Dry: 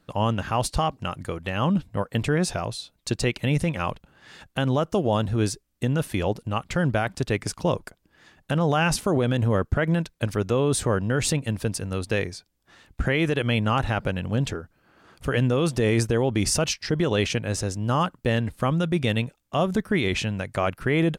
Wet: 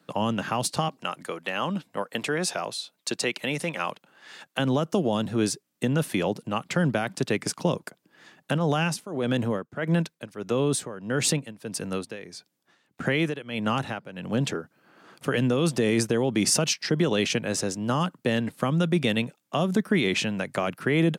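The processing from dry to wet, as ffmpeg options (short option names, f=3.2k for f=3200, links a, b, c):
-filter_complex "[0:a]asettb=1/sr,asplit=3[a][b][c];[a]atrim=end=0.884[d];[b]atrim=start=0.88:end=4.59,asetpts=PTS-STARTPTS,afade=t=in:d=0.004:c=qsin,afade=t=out:st=3.706:d=0.004:c=qsin,highpass=f=510:p=1[e];[c]atrim=start=4.586[f];[d][e]acrossfade=d=0.004:c1=hsin:c2=qsin[g];[g][f]acrossfade=d=0.004:c1=qsin:c2=hsin,asplit=3[h][i][j];[h]afade=t=out:st=8.56:d=0.02[k];[i]tremolo=f=1.6:d=0.86,afade=t=in:st=8.56:d=0.02,afade=t=out:st=14.39:d=0.02[l];[j]afade=t=in:st=14.39:d=0.02[m];[k][l][m]amix=inputs=3:normalize=0,highpass=f=150:w=0.5412,highpass=f=150:w=1.3066,acrossover=split=290|3000[n][o][p];[o]acompressor=threshold=-26dB:ratio=6[q];[n][q][p]amix=inputs=3:normalize=0,volume=2dB"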